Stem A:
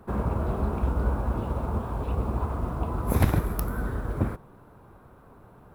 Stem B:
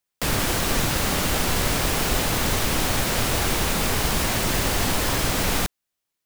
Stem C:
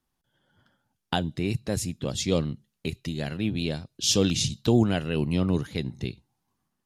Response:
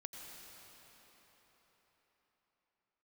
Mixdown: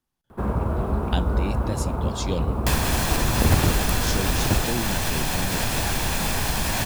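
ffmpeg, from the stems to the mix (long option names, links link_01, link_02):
-filter_complex "[0:a]acontrast=87,adelay=300,volume=-4dB[link_01];[1:a]aecho=1:1:1.2:0.35,adelay=2450,volume=2dB[link_02];[2:a]volume=-2.5dB[link_03];[link_02][link_03]amix=inputs=2:normalize=0,acompressor=threshold=-20dB:ratio=6,volume=0dB[link_04];[link_01][link_04]amix=inputs=2:normalize=0"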